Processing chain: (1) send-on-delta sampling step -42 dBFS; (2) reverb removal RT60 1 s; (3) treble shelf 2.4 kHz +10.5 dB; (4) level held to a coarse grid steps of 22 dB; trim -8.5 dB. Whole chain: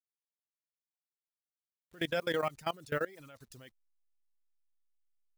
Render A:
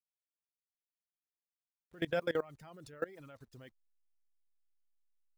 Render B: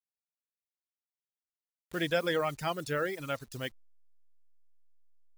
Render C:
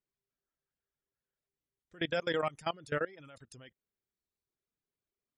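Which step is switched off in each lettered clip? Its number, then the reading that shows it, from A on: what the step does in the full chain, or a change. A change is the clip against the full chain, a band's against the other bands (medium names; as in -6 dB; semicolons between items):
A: 3, 4 kHz band -4.5 dB; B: 4, momentary loudness spread change -10 LU; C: 1, distortion -20 dB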